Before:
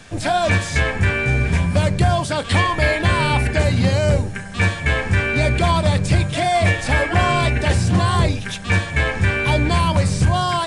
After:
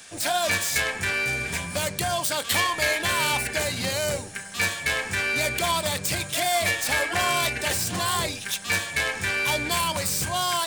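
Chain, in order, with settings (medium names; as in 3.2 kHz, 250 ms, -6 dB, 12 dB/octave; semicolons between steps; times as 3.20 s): tracing distortion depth 0.054 ms; RIAA curve recording; trim -6 dB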